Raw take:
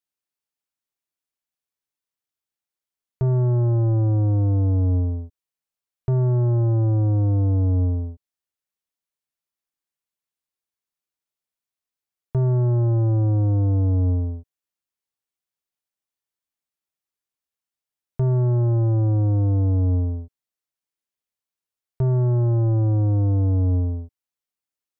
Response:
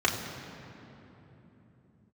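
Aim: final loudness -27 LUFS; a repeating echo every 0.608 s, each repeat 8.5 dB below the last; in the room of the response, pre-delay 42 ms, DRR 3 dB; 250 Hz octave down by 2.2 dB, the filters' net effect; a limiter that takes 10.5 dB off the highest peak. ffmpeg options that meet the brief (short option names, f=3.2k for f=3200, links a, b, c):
-filter_complex "[0:a]equalizer=f=250:t=o:g=-3.5,alimiter=level_in=3.5dB:limit=-24dB:level=0:latency=1,volume=-3.5dB,aecho=1:1:608|1216|1824|2432:0.376|0.143|0.0543|0.0206,asplit=2[a][b];[1:a]atrim=start_sample=2205,adelay=42[c];[b][c]afir=irnorm=-1:irlink=0,volume=-16dB[d];[a][d]amix=inputs=2:normalize=0,volume=0.5dB"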